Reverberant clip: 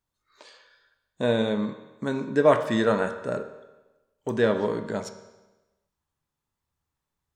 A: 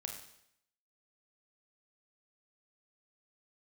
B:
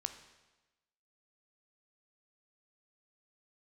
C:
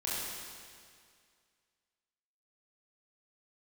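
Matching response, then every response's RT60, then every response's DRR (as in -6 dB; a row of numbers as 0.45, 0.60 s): B; 0.75, 1.1, 2.1 s; 2.0, 8.0, -8.0 dB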